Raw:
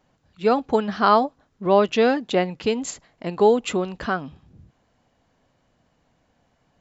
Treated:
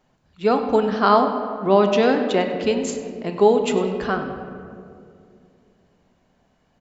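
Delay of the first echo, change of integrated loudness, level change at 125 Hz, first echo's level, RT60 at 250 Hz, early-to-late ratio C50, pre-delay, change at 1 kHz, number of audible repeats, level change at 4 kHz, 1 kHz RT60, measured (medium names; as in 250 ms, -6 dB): 98 ms, +1.5 dB, +2.0 dB, -15.5 dB, 3.0 s, 6.5 dB, 3 ms, +1.0 dB, 1, +1.0 dB, 2.0 s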